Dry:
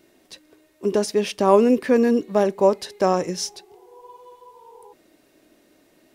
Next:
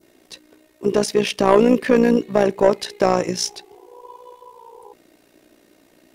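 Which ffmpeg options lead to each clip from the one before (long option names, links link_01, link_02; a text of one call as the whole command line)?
ffmpeg -i in.wav -af "adynamicequalizer=threshold=0.0112:dfrequency=2500:dqfactor=0.96:tfrequency=2500:tqfactor=0.96:attack=5:release=100:ratio=0.375:range=2:mode=boostabove:tftype=bell,acontrast=87,tremolo=f=59:d=0.667,volume=-1dB" out.wav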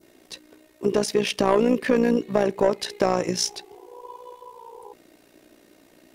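ffmpeg -i in.wav -af "acompressor=threshold=-20dB:ratio=2" out.wav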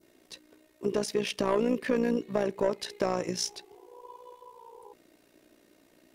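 ffmpeg -i in.wav -af "bandreject=frequency=780:width=16,volume=-7dB" out.wav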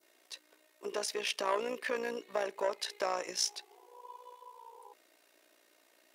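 ffmpeg -i in.wav -af "highpass=690" out.wav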